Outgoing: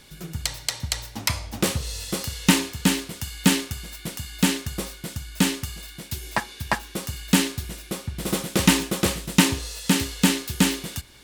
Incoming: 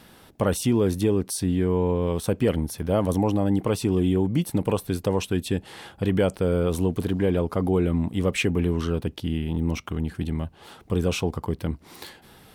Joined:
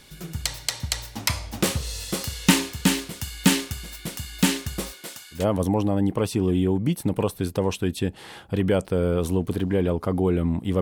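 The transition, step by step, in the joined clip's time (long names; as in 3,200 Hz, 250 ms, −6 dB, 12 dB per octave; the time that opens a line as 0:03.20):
outgoing
0:04.91–0:05.45: high-pass filter 250 Hz → 1,100 Hz
0:05.38: continue with incoming from 0:02.87, crossfade 0.14 s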